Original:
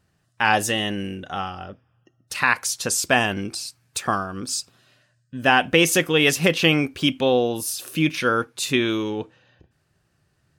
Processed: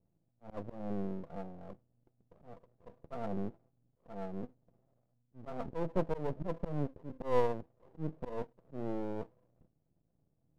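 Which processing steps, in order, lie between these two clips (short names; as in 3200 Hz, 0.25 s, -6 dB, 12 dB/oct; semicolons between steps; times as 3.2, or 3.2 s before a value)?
rippled Chebyshev low-pass 700 Hz, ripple 9 dB; half-wave rectifier; auto swell 0.17 s; gain -1.5 dB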